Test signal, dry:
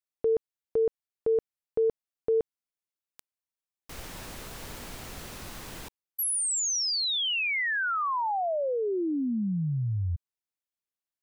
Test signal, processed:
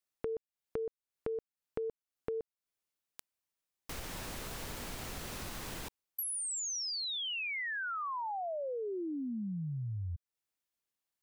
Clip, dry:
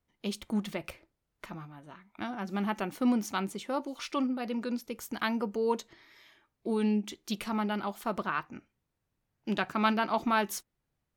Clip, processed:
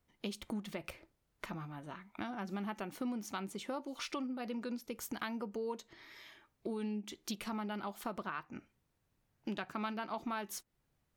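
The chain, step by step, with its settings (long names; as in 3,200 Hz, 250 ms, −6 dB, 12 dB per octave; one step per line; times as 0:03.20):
downward compressor 4 to 1, threshold −42 dBFS
level +3 dB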